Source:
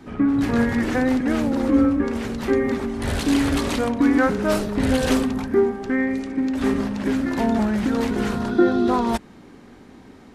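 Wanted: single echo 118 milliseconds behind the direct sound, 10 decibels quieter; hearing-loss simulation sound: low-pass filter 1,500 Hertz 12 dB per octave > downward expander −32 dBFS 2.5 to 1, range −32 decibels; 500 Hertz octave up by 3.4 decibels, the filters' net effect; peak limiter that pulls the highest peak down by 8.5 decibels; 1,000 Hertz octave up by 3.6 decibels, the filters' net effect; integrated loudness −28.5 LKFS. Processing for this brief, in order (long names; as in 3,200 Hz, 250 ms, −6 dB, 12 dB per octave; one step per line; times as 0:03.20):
parametric band 500 Hz +3.5 dB
parametric band 1,000 Hz +4.5 dB
brickwall limiter −12.5 dBFS
low-pass filter 1,500 Hz 12 dB per octave
single-tap delay 118 ms −10 dB
downward expander −32 dBFS 2.5 to 1, range −32 dB
level −7 dB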